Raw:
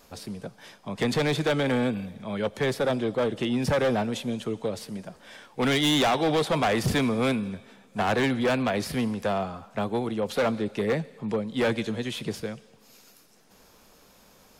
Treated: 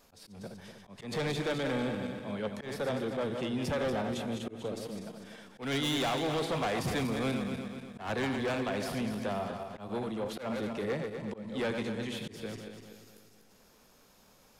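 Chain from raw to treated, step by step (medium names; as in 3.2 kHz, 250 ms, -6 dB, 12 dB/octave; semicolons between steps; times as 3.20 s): backward echo that repeats 122 ms, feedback 67%, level -6.5 dB; slow attack 154 ms; saturation -18 dBFS, distortion -19 dB; trim -7 dB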